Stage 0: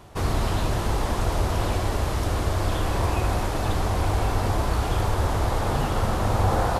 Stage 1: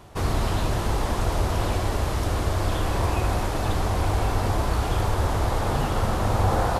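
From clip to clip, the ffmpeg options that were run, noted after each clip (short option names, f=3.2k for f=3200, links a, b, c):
-af anull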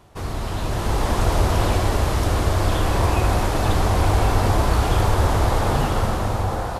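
-af "dynaudnorm=f=150:g=11:m=11.5dB,volume=-4dB"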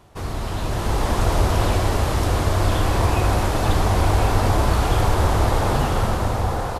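-af "aecho=1:1:1027:0.266"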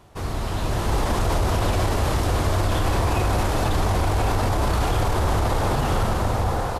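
-af "alimiter=limit=-13dB:level=0:latency=1:release=19"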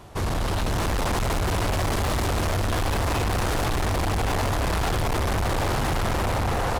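-af "asoftclip=type=hard:threshold=-28.5dB,volume=6dB"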